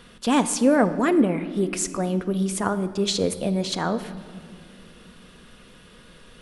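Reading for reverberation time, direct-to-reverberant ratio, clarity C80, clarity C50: 2.3 s, 10.5 dB, 14.5 dB, 13.0 dB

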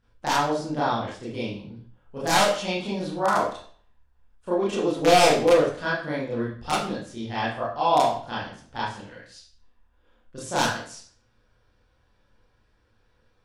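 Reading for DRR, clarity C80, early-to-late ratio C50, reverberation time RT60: -9.5 dB, 7.5 dB, 2.5 dB, 0.50 s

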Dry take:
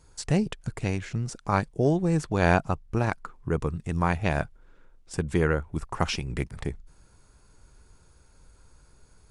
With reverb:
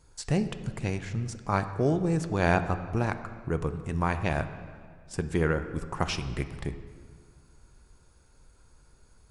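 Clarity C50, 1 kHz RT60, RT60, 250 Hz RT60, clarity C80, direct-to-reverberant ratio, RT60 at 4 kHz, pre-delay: 11.5 dB, 1.8 s, 1.9 s, 2.1 s, 12.5 dB, 9.5 dB, 1.4 s, 4 ms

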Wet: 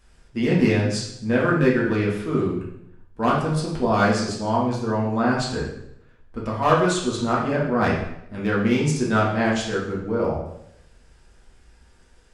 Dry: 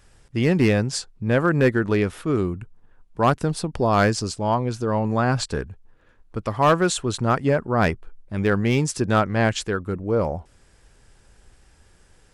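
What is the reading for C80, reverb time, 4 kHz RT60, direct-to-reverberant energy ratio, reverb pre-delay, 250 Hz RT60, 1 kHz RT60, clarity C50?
7.0 dB, 0.75 s, 0.70 s, -5.0 dB, 3 ms, 0.80 s, 0.75 s, 3.5 dB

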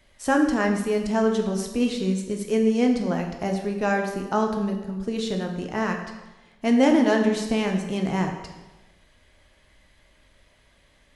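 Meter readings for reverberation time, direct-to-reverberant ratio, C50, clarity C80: 1.1 s, 2.5 dB, 6.0 dB, 8.0 dB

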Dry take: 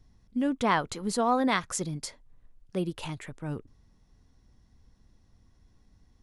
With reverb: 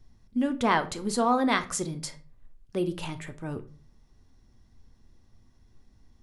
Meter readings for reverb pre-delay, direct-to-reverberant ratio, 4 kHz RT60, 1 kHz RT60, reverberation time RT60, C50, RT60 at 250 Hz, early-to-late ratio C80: 3 ms, 8.5 dB, 0.25 s, 0.35 s, 0.40 s, 15.5 dB, 0.50 s, 21.5 dB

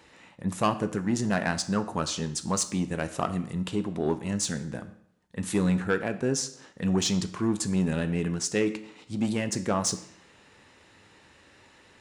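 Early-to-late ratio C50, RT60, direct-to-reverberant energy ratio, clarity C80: 14.0 dB, 0.65 s, 9.0 dB, 16.5 dB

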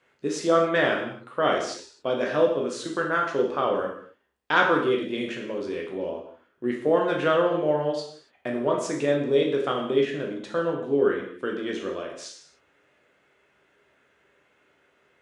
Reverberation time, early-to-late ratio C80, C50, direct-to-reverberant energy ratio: not exponential, 8.0 dB, 5.0 dB, -0.5 dB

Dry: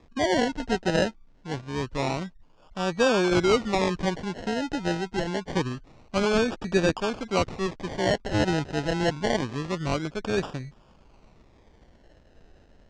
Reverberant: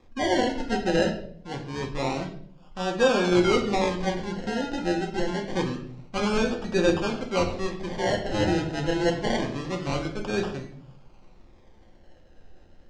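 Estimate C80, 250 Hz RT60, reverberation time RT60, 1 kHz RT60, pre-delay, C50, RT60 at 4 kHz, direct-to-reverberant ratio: 12.0 dB, 0.80 s, 0.60 s, 0.50 s, 3 ms, 9.0 dB, 0.45 s, 1.0 dB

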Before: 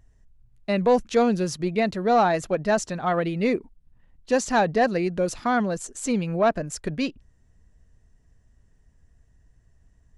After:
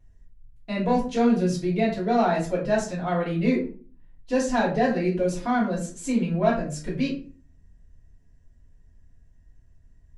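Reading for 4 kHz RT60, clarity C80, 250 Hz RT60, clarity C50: 0.30 s, 12.0 dB, 0.55 s, 7.0 dB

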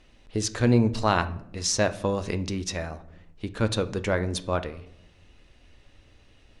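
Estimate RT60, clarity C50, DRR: 0.80 s, 16.5 dB, 10.5 dB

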